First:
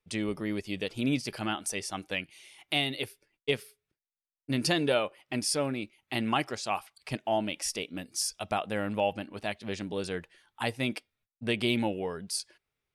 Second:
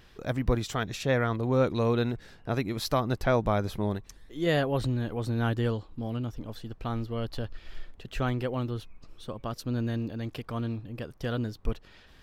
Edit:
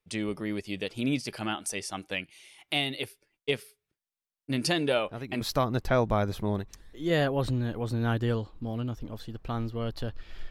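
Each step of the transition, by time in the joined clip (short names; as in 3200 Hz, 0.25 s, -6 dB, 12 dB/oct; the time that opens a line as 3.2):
first
4.94 add second from 2.3 s 0.47 s -9.5 dB
5.41 switch to second from 2.77 s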